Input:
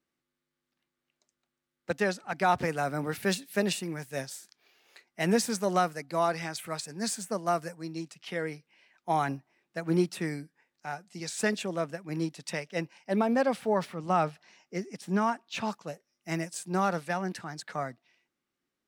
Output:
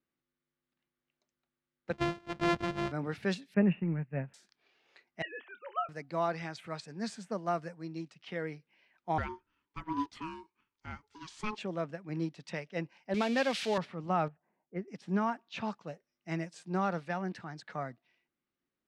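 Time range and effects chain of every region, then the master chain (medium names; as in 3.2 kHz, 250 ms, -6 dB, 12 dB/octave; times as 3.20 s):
1.93–2.92 s: sorted samples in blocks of 128 samples + treble shelf 5.2 kHz -3 dB
3.54–4.34 s: companding laws mixed up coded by A + Chebyshev low-pass 2.7 kHz, order 6 + peaking EQ 160 Hz +12.5 dB 1.3 oct
5.22–5.89 s: formants replaced by sine waves + high-pass 1.3 kHz + doubling 28 ms -13 dB
9.18–11.58 s: brick-wall FIR high-pass 210 Hz + ring modulator 640 Hz
13.14–13.78 s: zero-crossing glitches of -26 dBFS + frequency weighting D
14.28–14.88 s: low-pass 2.2 kHz + level-controlled noise filter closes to 730 Hz, open at -29.5 dBFS + upward expansion, over -42 dBFS
whole clip: low-pass 4.1 kHz 12 dB/octave; bass shelf 240 Hz +4 dB; trim -5 dB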